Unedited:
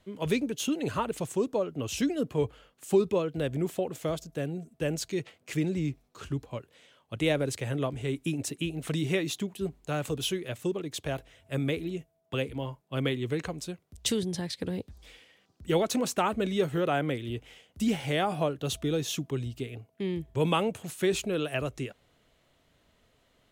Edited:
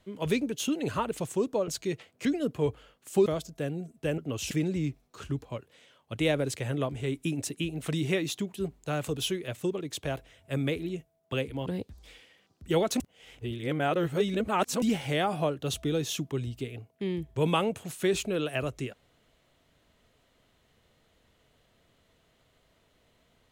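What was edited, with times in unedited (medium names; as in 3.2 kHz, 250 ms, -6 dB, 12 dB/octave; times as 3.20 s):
1.68–2.01 s: swap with 4.95–5.52 s
3.02–4.03 s: delete
12.67–14.65 s: delete
15.99–17.81 s: reverse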